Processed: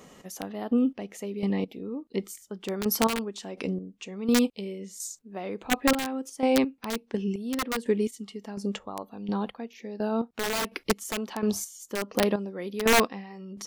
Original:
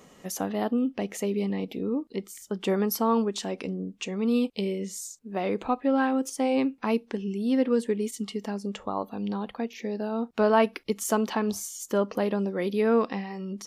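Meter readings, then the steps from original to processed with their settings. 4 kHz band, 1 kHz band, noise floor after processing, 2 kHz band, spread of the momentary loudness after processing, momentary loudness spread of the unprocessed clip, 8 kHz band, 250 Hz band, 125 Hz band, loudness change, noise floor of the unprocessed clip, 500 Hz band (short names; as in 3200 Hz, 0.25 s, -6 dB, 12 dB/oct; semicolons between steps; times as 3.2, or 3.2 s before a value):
+5.0 dB, -2.0 dB, -60 dBFS, +4.0 dB, 13 LU, 10 LU, +2.0 dB, -1.5 dB, n/a, -1.0 dB, -55 dBFS, -2.5 dB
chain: wrapped overs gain 16 dB; chopper 1.4 Hz, depth 65%, duty 30%; gain +2.5 dB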